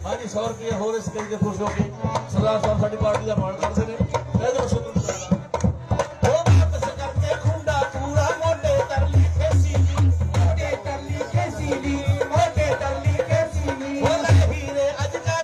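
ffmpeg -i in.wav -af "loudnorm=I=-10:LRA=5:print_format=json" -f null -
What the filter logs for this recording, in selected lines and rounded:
"input_i" : "-22.2",
"input_tp" : "-8.1",
"input_lra" : "2.2",
"input_thresh" : "-32.2",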